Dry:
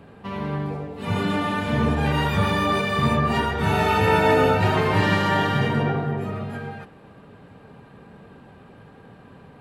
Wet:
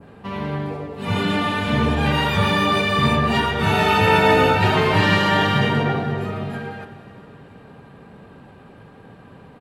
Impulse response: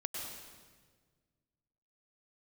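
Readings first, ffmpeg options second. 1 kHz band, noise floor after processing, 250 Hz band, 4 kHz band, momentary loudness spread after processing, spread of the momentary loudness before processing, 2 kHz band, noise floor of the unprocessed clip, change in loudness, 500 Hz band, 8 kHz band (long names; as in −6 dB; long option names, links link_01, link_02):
+3.0 dB, −45 dBFS, +2.5 dB, +7.0 dB, 14 LU, 13 LU, +4.5 dB, −48 dBFS, +3.0 dB, +2.0 dB, +3.5 dB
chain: -filter_complex "[0:a]aecho=1:1:488|976|1464|1952:0.0841|0.0438|0.0228|0.0118,asplit=2[link_01][link_02];[1:a]atrim=start_sample=2205[link_03];[link_02][link_03]afir=irnorm=-1:irlink=0,volume=-9.5dB[link_04];[link_01][link_04]amix=inputs=2:normalize=0,adynamicequalizer=threshold=0.0112:dfrequency=3300:dqfactor=0.93:tfrequency=3300:tqfactor=0.93:attack=5:release=100:ratio=0.375:range=2.5:mode=boostabove:tftype=bell"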